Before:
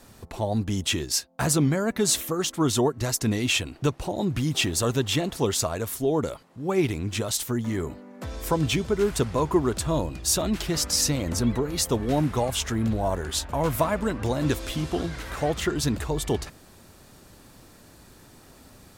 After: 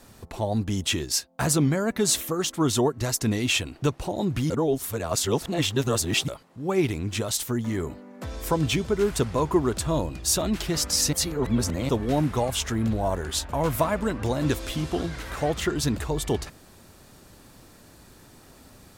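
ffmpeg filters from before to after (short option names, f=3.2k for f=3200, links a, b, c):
-filter_complex "[0:a]asplit=5[a][b][c][d][e];[a]atrim=end=4.502[f];[b]atrim=start=4.498:end=6.282,asetpts=PTS-STARTPTS,areverse[g];[c]atrim=start=6.278:end=11.132[h];[d]atrim=start=11.128:end=11.892,asetpts=PTS-STARTPTS,areverse[i];[e]atrim=start=11.888[j];[f][g]acrossfade=d=0.004:c1=hsin:c2=hsin[k];[k][h]acrossfade=d=0.004:c1=hsin:c2=hsin[l];[l][i]acrossfade=d=0.004:c1=hsin:c2=hsin[m];[m][j]acrossfade=d=0.004:c1=hsin:c2=hsin"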